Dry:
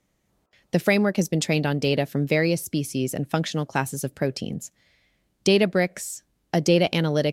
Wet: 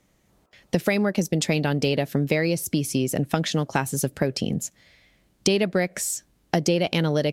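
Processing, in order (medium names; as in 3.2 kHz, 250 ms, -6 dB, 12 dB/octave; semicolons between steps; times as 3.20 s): compression 4:1, threshold -26 dBFS, peak gain reduction 10.5 dB; trim +6.5 dB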